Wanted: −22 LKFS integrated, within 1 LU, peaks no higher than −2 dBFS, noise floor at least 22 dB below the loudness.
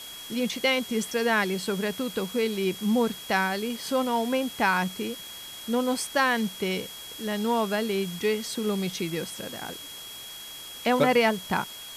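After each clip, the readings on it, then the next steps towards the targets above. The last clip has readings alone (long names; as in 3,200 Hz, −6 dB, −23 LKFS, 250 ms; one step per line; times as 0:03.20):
interfering tone 3,300 Hz; level of the tone −41 dBFS; background noise floor −41 dBFS; target noise floor −49 dBFS; integrated loudness −27.0 LKFS; sample peak −9.5 dBFS; target loudness −22.0 LKFS
→ notch filter 3,300 Hz, Q 30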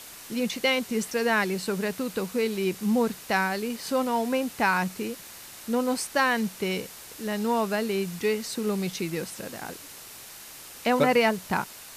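interfering tone none found; background noise floor −45 dBFS; target noise floor −49 dBFS
→ noise reduction from a noise print 6 dB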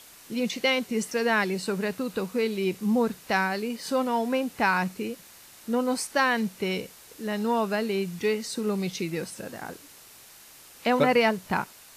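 background noise floor −51 dBFS; integrated loudness −27.0 LKFS; sample peak −9.5 dBFS; target loudness −22.0 LKFS
→ level +5 dB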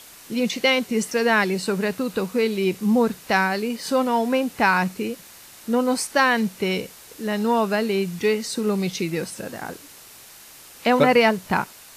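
integrated loudness −22.0 LKFS; sample peak −4.5 dBFS; background noise floor −46 dBFS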